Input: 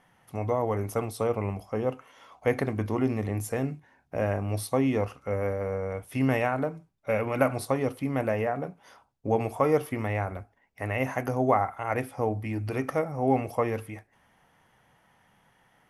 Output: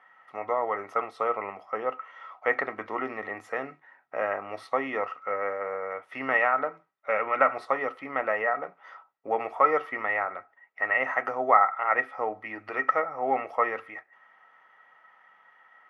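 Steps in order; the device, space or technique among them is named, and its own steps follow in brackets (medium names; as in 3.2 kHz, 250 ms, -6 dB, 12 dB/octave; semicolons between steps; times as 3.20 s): tin-can telephone (band-pass 630–2400 Hz; small resonant body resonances 1.3/1.9 kHz, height 16 dB, ringing for 45 ms); trim +3 dB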